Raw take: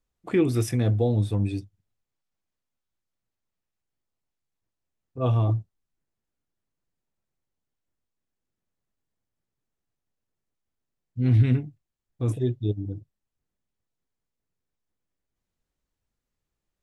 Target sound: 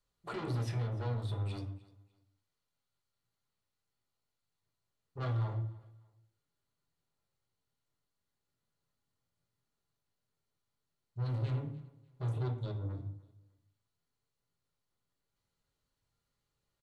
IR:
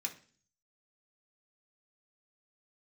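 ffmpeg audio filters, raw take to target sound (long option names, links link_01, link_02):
-filter_complex "[0:a]acrossover=split=4700[link_01][link_02];[link_01]alimiter=limit=-21.5dB:level=0:latency=1:release=184[link_03];[link_02]acompressor=threshold=-60dB:ratio=6[link_04];[link_03][link_04]amix=inputs=2:normalize=0,asoftclip=type=tanh:threshold=-35dB,aecho=1:1:298|596:0.0841|0.0236[link_05];[1:a]atrim=start_sample=2205,afade=type=out:start_time=0.17:duration=0.01,atrim=end_sample=7938,asetrate=24696,aresample=44100[link_06];[link_05][link_06]afir=irnorm=-1:irlink=0,volume=-2.5dB"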